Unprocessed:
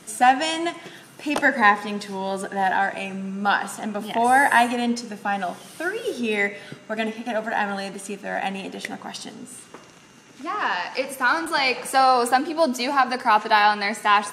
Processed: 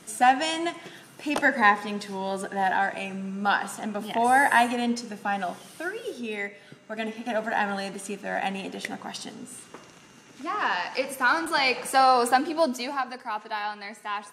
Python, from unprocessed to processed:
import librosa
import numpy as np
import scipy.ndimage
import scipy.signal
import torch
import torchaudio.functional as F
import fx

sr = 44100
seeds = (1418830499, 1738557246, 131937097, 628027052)

y = fx.gain(x, sr, db=fx.line((5.53, -3.0), (6.59, -11.0), (7.33, -2.0), (12.56, -2.0), (13.25, -14.0)))